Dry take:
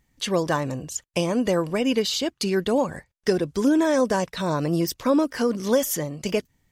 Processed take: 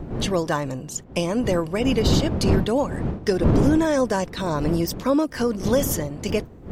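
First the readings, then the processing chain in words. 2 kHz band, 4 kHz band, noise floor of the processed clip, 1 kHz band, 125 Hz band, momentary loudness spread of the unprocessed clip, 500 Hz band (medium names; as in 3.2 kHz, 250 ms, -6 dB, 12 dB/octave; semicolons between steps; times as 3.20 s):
0.0 dB, -0.5 dB, -41 dBFS, +0.5 dB, +7.0 dB, 7 LU, +0.5 dB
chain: wind noise 260 Hz -24 dBFS; loudness maximiser +7.5 dB; trim -7.5 dB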